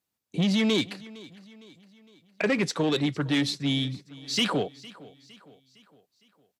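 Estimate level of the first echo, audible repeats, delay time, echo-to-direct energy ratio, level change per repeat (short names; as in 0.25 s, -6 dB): -20.5 dB, 3, 0.459 s, -19.5 dB, -6.0 dB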